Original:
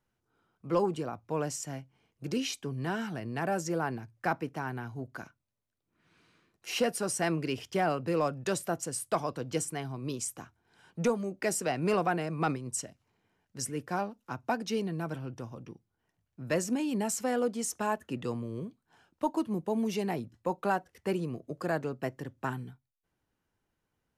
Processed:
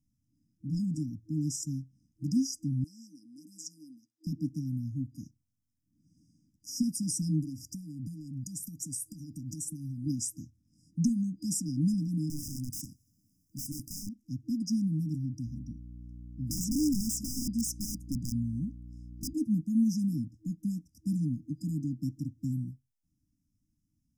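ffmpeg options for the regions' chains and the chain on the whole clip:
ffmpeg -i in.wav -filter_complex "[0:a]asettb=1/sr,asplit=3[link_01][link_02][link_03];[link_01]atrim=end=2.844[link_04];[link_02]atrim=start=2.84:end=4.27,asetpts=PTS-STARTPTS,afade=type=in:duration=0.004:curve=qsin,afade=type=out:start_time=1.426:duration=0.004:curve=qsin,highpass=frequency=410:width=0.5412,highpass=frequency=410:width=1.3066,highshelf=frequency=8200:gain=-9.5[link_05];[link_03]atrim=start=4.266[link_06];[link_04][link_05]acrossfade=duration=0.004:curve1=hsin:curve2=qsin[link_07];[link_07][link_06]acrossfade=duration=0.004:curve1=qsin:curve2=hsin,asettb=1/sr,asplit=3[link_08][link_09][link_10];[link_08]atrim=end=7.414[link_11];[link_09]atrim=start=7.41:end=10.07,asetpts=PTS-STARTPTS,afade=type=in:duration=0.004:curve=qsin,afade=type=out:start_time=2.656:duration=0.004:curve=qsin,bandreject=frequency=5100:width=17,acompressor=threshold=-39dB:ratio=4:attack=3.2:release=140:knee=1:detection=peak,highshelf=frequency=7800:gain=10.5[link_12];[link_10]atrim=start=10.066[link_13];[link_11][link_12]acrossfade=duration=0.004:curve1=hsin:curve2=qsin[link_14];[link_14][link_13]acrossfade=duration=0.004:curve1=qsin:curve2=hsin,asettb=1/sr,asplit=3[link_15][link_16][link_17];[link_15]atrim=end=12.294[link_18];[link_16]atrim=start=12.29:end=14.09,asetpts=PTS-STARTPTS,afade=type=in:duration=0.004:curve=qsin,afade=type=out:start_time=1.796:duration=0.004:curve=qsin,aemphasis=mode=production:type=75kf,acompressor=threshold=-27dB:ratio=5:attack=3.2:release=140:knee=1:detection=peak,aeval=exprs='(mod(42.2*val(0)+1,2)-1)/42.2':channel_layout=same[link_19];[link_17]atrim=start=14.086[link_20];[link_18][link_19]acrossfade=duration=0.004:curve1=hsin:curve2=qsin[link_21];[link_21][link_20]acrossfade=duration=0.004:curve1=qsin:curve2=hsin,asettb=1/sr,asplit=3[link_22][link_23][link_24];[link_22]atrim=end=15.464[link_25];[link_23]atrim=start=15.46:end=19.34,asetpts=PTS-STARTPTS,afade=type=in:duration=0.004:curve=qsin,afade=type=out:start_time=3.876:duration=0.004:curve=qsin,aeval=exprs='(mod(21.1*val(0)+1,2)-1)/21.1':channel_layout=same,aeval=exprs='val(0)+0.00316*(sin(2*PI*60*n/s)+sin(2*PI*2*60*n/s)/2+sin(2*PI*3*60*n/s)/3+sin(2*PI*4*60*n/s)/4+sin(2*PI*5*60*n/s)/5)':channel_layout=same[link_26];[link_24]atrim=start=19.336[link_27];[link_25][link_26]acrossfade=duration=0.004:curve1=hsin:curve2=qsin[link_28];[link_28][link_27]acrossfade=duration=0.004:curve1=qsin:curve2=hsin,afftfilt=real='re*(1-between(b*sr/4096,320,4900))':imag='im*(1-between(b*sr/4096,320,4900))':win_size=4096:overlap=0.75,highshelf=frequency=5500:gain=-7.5,volume=6dB" out.wav

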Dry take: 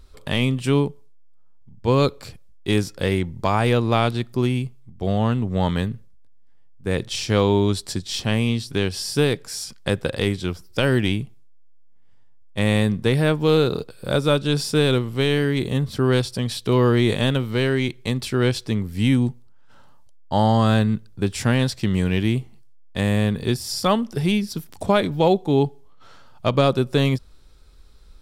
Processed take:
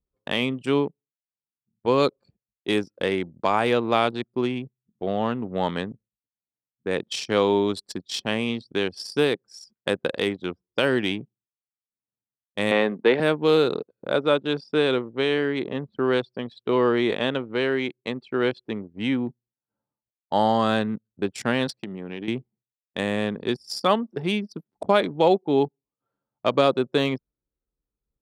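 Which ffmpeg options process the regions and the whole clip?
ffmpeg -i in.wav -filter_complex "[0:a]asettb=1/sr,asplit=3[link_01][link_02][link_03];[link_01]atrim=end=12.714[link_04];[link_02]atrim=start=12.71:end=13.2,asetpts=PTS-STARTPTS,afade=type=in:duration=0.004:curve=qsin,afade=type=out:start_time=0.486:duration=0.004:curve=qsin,acontrast=66,highpass=310,lowpass=2600[link_05];[link_03]atrim=start=13.196[link_06];[link_04][link_05]acrossfade=duration=0.004:curve1=hsin:curve2=qsin[link_07];[link_07][link_06]acrossfade=duration=0.004:curve1=qsin:curve2=hsin,asettb=1/sr,asplit=3[link_08][link_09][link_10];[link_08]atrim=end=14.074[link_11];[link_09]atrim=start=14.07:end=19.27,asetpts=PTS-STARTPTS,afade=type=in:duration=0.004:curve=qsin,afade=type=out:start_time=5.196:duration=0.004:curve=qsin,lowpass=frequency=9600:width=0.5412,lowpass=frequency=9600:width=1.3066,bass=frequency=250:gain=-3,treble=frequency=4000:gain=-7[link_12];[link_10]atrim=start=19.266[link_13];[link_11][link_12]acrossfade=duration=0.004:curve1=hsin:curve2=qsin[link_14];[link_14][link_13]acrossfade=duration=0.004:curve1=qsin:curve2=hsin,asettb=1/sr,asplit=3[link_15][link_16][link_17];[link_15]atrim=end=21.674[link_18];[link_16]atrim=start=21.67:end=22.28,asetpts=PTS-STARTPTS,afade=type=in:duration=0.004:curve=qsin,afade=type=out:start_time=0.606:duration=0.004:curve=qsin,highpass=120,acompressor=threshold=-23dB:ratio=10:attack=3.2:release=140:knee=1:detection=peak[link_19];[link_17]atrim=start=22.276[link_20];[link_18][link_19]acrossfade=duration=0.004:curve1=hsin:curve2=qsin[link_21];[link_21][link_20]acrossfade=duration=0.004:curve1=qsin:curve2=hsin,highshelf=frequency=4700:gain=-2.5,anlmdn=100,highpass=270" out.wav

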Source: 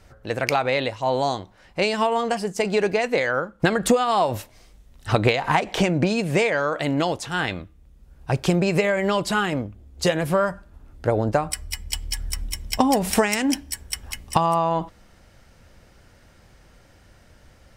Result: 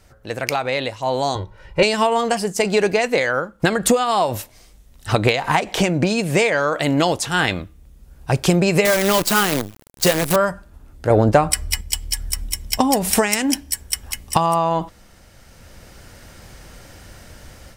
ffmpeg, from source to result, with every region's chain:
ffmpeg -i in.wav -filter_complex "[0:a]asettb=1/sr,asplit=3[link_01][link_02][link_03];[link_01]atrim=end=1.354[link_04];[link_02]atrim=start=1.35:end=1.83,asetpts=PTS-STARTPTS,afade=type=in:duration=0.004:curve=qsin,afade=type=out:start_time=0.476:duration=0.004:curve=qsin,bass=frequency=250:gain=7,treble=frequency=4000:gain=-12,aecho=1:1:2.1:0.94,atrim=end_sample=21168[link_05];[link_03]atrim=start=1.826[link_06];[link_04][link_05]acrossfade=duration=0.004:curve1=hsin:curve2=qsin[link_07];[link_07][link_06]acrossfade=duration=0.004:curve1=qsin:curve2=hsin,asettb=1/sr,asplit=3[link_08][link_09][link_10];[link_08]atrim=end=8.854[link_11];[link_09]atrim=start=8.85:end=10.36,asetpts=PTS-STARTPTS,afade=type=in:duration=0.004:curve=qsin,afade=type=out:start_time=1.506:duration=0.004:curve=qsin,highpass=100,acrusher=bits=5:dc=4:mix=0:aa=0.000001[link_12];[link_10]atrim=start=10.356[link_13];[link_11][link_12]acrossfade=duration=0.004:curve1=hsin:curve2=qsin[link_14];[link_14][link_13]acrossfade=duration=0.004:curve1=qsin:curve2=hsin,asettb=1/sr,asplit=3[link_15][link_16][link_17];[link_15]atrim=end=11.104[link_18];[link_16]atrim=start=11.1:end=11.81,asetpts=PTS-STARTPTS,afade=type=in:duration=0.004:curve=qsin,afade=type=out:start_time=0.706:duration=0.004:curve=qsin,highshelf=frequency=4700:gain=-6,acontrast=84[link_19];[link_17]atrim=start=11.806[link_20];[link_18][link_19]acrossfade=duration=0.004:curve1=hsin:curve2=qsin[link_21];[link_21][link_20]acrossfade=duration=0.004:curve1=qsin:curve2=hsin,highshelf=frequency=6000:gain=8.5,dynaudnorm=framelen=590:gausssize=3:maxgain=11.5dB,volume=-1dB" out.wav

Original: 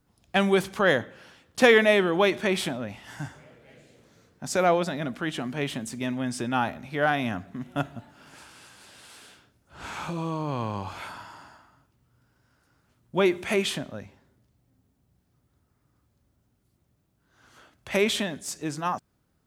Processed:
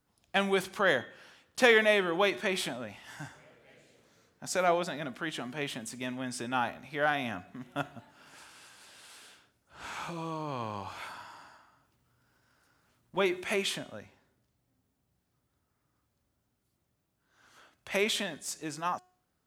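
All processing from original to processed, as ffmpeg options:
ffmpeg -i in.wav -filter_complex "[0:a]asettb=1/sr,asplit=3[link_01][link_02][link_03];[link_01]atrim=end=11.054[link_04];[link_02]atrim=start=11.05:end=13.17,asetpts=PTS-STARTPTS,afade=type=in:duration=0.004:curve=qsin,afade=type=out:start_time=2.116:duration=0.004:curve=qsin,acompressor=mode=upward:threshold=-56dB:ratio=2.5:attack=3.2:release=140:knee=2.83:detection=peak,asoftclip=type=hard:threshold=-33.5dB[link_05];[link_03]atrim=start=13.166[link_06];[link_04][link_05]acrossfade=duration=0.004:curve1=hsin:curve2=qsin[link_07];[link_07][link_06]acrossfade=duration=0.004:curve1=qsin:curve2=hsin,lowshelf=frequency=360:gain=-8,bandreject=frequency=364.2:width_type=h:width=4,bandreject=frequency=728.4:width_type=h:width=4,bandreject=frequency=1092.6:width_type=h:width=4,bandreject=frequency=1456.8:width_type=h:width=4,bandreject=frequency=1821:width_type=h:width=4,bandreject=frequency=2185.2:width_type=h:width=4,bandreject=frequency=2549.4:width_type=h:width=4,bandreject=frequency=2913.6:width_type=h:width=4,bandreject=frequency=3277.8:width_type=h:width=4,bandreject=frequency=3642:width_type=h:width=4,bandreject=frequency=4006.2:width_type=h:width=4,bandreject=frequency=4370.4:width_type=h:width=4,bandreject=frequency=4734.6:width_type=h:width=4,bandreject=frequency=5098.8:width_type=h:width=4,bandreject=frequency=5463:width_type=h:width=4,bandreject=frequency=5827.2:width_type=h:width=4,bandreject=frequency=6191.4:width_type=h:width=4,bandreject=frequency=6555.6:width_type=h:width=4,bandreject=frequency=6919.8:width_type=h:width=4,bandreject=frequency=7284:width_type=h:width=4,bandreject=frequency=7648.2:width_type=h:width=4,bandreject=frequency=8012.4:width_type=h:width=4,bandreject=frequency=8376.6:width_type=h:width=4,bandreject=frequency=8740.8:width_type=h:width=4,bandreject=frequency=9105:width_type=h:width=4,bandreject=frequency=9469.2:width_type=h:width=4,bandreject=frequency=9833.4:width_type=h:width=4,bandreject=frequency=10197.6:width_type=h:width=4,bandreject=frequency=10561.8:width_type=h:width=4,volume=-3dB" out.wav

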